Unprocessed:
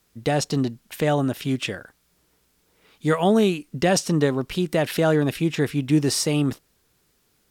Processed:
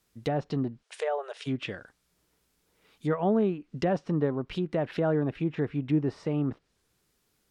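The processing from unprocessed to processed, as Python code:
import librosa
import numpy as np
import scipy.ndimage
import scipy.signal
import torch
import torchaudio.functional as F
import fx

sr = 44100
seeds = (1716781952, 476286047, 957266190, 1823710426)

y = fx.brickwall_bandpass(x, sr, low_hz=390.0, high_hz=11000.0, at=(0.82, 1.46), fade=0.02)
y = fx.env_lowpass_down(y, sr, base_hz=1300.0, full_db=-18.5)
y = y * librosa.db_to_amplitude(-6.5)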